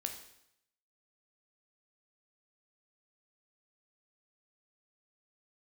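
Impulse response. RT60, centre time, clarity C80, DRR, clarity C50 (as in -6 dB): 0.75 s, 19 ms, 10.5 dB, 4.5 dB, 8.0 dB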